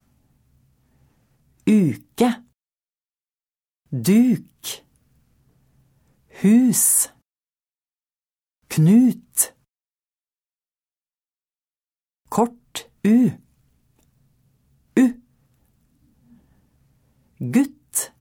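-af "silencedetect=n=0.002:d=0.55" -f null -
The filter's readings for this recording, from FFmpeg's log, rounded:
silence_start: 2.48
silence_end: 3.86 | silence_duration: 1.38
silence_start: 7.19
silence_end: 8.64 | silence_duration: 1.45
silence_start: 9.57
silence_end: 12.26 | silence_duration: 2.68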